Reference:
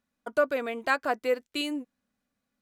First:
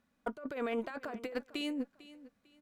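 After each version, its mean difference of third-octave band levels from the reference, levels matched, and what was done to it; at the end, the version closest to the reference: 7.5 dB: high shelf 3900 Hz -8 dB; negative-ratio compressor -37 dBFS, ratio -1; tube stage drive 19 dB, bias 0.35; on a send: feedback echo 0.449 s, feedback 28%, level -18 dB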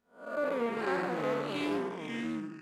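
11.0 dB: time blur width 0.207 s; echoes that change speed 0.135 s, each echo -4 st, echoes 2; high shelf 11000 Hz -5 dB; Doppler distortion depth 0.18 ms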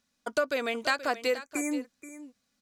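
5.5 dB: spectral delete 1.36–1.75, 2500–5800 Hz; bell 5400 Hz +12.5 dB 1.8 oct; compressor 3:1, threshold -26 dBFS, peak gain reduction 7.5 dB; echo 0.478 s -14.5 dB; gain +1.5 dB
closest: third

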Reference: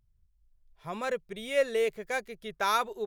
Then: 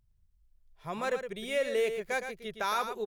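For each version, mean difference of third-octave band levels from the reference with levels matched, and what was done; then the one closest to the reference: 4.0 dB: limiter -21 dBFS, peak gain reduction 6.5 dB; on a send: echo 0.114 s -8.5 dB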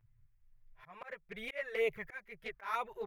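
6.5 dB: ten-band EQ 125 Hz +10 dB, 250 Hz -11 dB, 1000 Hz +3 dB, 2000 Hz +11 dB, 4000 Hz -8 dB, 8000 Hz -12 dB; auto swell 0.543 s; envelope flanger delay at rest 9.4 ms, full sweep at -29.5 dBFS; gain +2.5 dB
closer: first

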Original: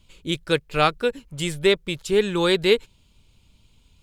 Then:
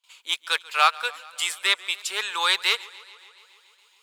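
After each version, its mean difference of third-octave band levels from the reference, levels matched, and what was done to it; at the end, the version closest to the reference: 12.0 dB: gate with hold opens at -47 dBFS; in parallel at -10 dB: wavefolder -14.5 dBFS; on the sum: Chebyshev high-pass 940 Hz, order 3; warbling echo 0.141 s, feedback 72%, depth 88 cents, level -22 dB; gain +2.5 dB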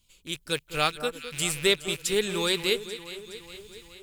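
7.5 dB: rattling part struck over -37 dBFS, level -26 dBFS; AGC gain up to 14 dB; pre-emphasis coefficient 0.8; echo with dull and thin repeats by turns 0.209 s, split 1500 Hz, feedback 76%, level -11.5 dB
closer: second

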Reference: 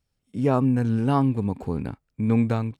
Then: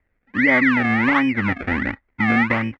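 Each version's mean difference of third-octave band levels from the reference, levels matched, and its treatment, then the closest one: 8.0 dB: comb 3.5 ms, depth 86%; compressor 2.5:1, threshold -22 dBFS, peak gain reduction 6 dB; decimation with a swept rate 31×, swing 100% 1.4 Hz; synth low-pass 2000 Hz, resonance Q 8.7; gain +3.5 dB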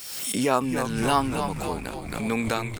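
13.0 dB: HPF 230 Hz 6 dB/oct; tilt +4 dB/oct; on a send: frequency-shifting echo 0.27 s, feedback 57%, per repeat -110 Hz, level -7 dB; on the sum: backwards sustainer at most 41 dB/s; gain +3.5 dB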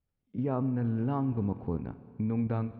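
4.0 dB: high shelf 3300 Hz -11.5 dB; level quantiser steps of 9 dB; air absorption 220 m; Schroeder reverb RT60 2.4 s, combs from 26 ms, DRR 14 dB; gain -2 dB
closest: third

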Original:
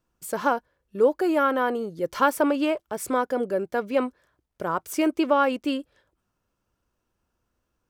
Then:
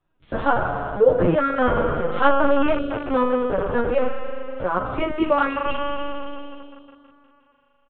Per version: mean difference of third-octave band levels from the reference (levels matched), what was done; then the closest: 11.5 dB: spring tank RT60 3.2 s, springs 40 ms, chirp 75 ms, DRR 1 dB; LPC vocoder at 8 kHz pitch kept; endless flanger 10.1 ms -0.5 Hz; gain +6 dB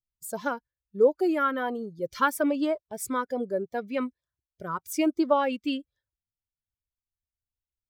5.0 dB: per-bin expansion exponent 1.5; low shelf 130 Hz -5.5 dB; LFO notch sine 1.2 Hz 660–2700 Hz; gain +1 dB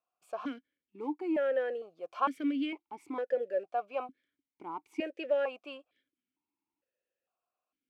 7.5 dB: low shelf 480 Hz -8 dB; in parallel at -8.5 dB: short-mantissa float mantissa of 2-bit; on the sum: vowel sequencer 2.2 Hz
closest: second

